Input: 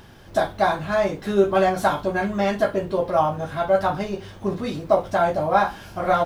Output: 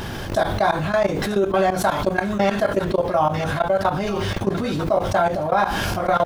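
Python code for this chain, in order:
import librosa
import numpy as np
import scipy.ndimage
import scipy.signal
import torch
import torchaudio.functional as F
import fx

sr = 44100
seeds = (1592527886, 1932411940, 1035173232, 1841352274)

y = fx.high_shelf(x, sr, hz=4100.0, db=3.0, at=(1.91, 2.38))
y = fx.level_steps(y, sr, step_db=21)
y = fx.echo_wet_highpass(y, sr, ms=945, feedback_pct=36, hz=1600.0, wet_db=-17.5)
y = fx.env_flatten(y, sr, amount_pct=70)
y = y * 10.0 ** (3.0 / 20.0)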